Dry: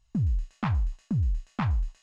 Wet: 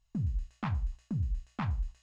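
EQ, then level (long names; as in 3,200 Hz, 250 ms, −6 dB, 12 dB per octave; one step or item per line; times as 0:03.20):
mains-hum notches 60/120/180/240 Hz
−5.5 dB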